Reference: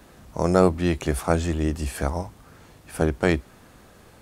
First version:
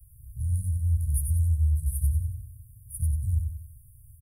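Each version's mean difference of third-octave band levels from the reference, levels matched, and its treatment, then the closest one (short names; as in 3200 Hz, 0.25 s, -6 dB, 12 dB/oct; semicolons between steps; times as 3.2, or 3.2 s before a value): 20.5 dB: Chebyshev band-stop 120–9700 Hz, order 5; feedback echo 93 ms, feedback 43%, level -5 dB; gain +4.5 dB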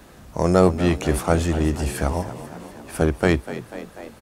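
3.5 dB: in parallel at -7 dB: hard clip -16.5 dBFS, distortion -8 dB; on the sum: frequency-shifting echo 0.245 s, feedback 64%, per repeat +52 Hz, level -14 dB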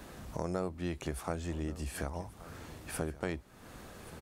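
8.0 dB: compressor 3:1, threshold -39 dBFS, peak gain reduction 20 dB; on a send: echo 1.13 s -18 dB; on the sum: gain +1 dB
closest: second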